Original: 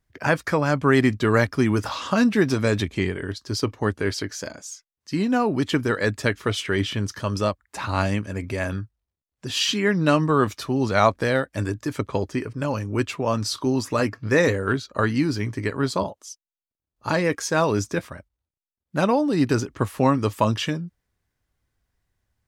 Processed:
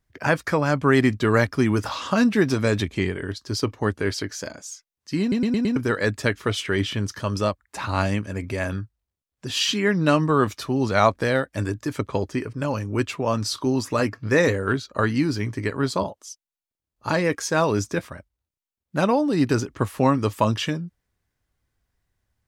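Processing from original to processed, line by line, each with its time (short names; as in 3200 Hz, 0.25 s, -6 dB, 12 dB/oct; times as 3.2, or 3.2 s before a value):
5.21 stutter in place 0.11 s, 5 plays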